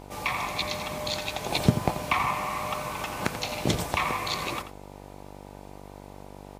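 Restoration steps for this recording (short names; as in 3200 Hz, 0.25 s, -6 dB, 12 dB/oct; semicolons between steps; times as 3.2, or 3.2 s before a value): de-hum 49 Hz, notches 20; inverse comb 86 ms -11.5 dB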